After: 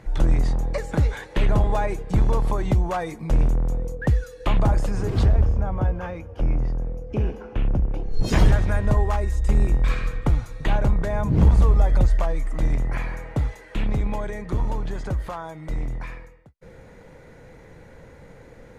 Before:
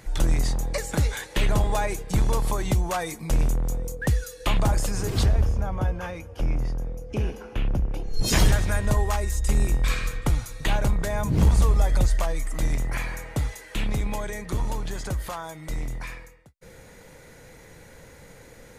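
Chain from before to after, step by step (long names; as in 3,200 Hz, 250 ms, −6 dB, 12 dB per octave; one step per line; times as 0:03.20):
low-pass filter 1,300 Hz 6 dB per octave
level +3 dB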